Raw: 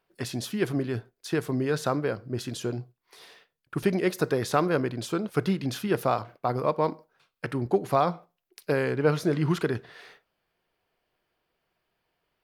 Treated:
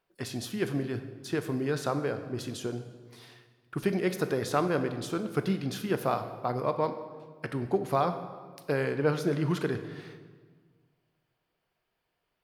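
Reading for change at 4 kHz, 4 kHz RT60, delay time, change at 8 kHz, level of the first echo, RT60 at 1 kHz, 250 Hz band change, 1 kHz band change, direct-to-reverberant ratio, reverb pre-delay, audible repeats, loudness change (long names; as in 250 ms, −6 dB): −3.0 dB, 1.2 s, no echo audible, −3.0 dB, no echo audible, 1.5 s, −3.0 dB, −3.0 dB, 9.0 dB, 11 ms, no echo audible, −3.0 dB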